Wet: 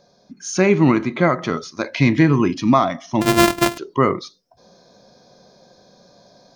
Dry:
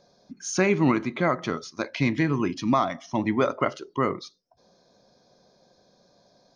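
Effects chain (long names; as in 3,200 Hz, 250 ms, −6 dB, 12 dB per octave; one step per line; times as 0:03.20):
0:03.21–0:03.78: samples sorted by size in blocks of 128 samples
harmonic and percussive parts rebalanced harmonic +5 dB
speech leveller 2 s
level +3.5 dB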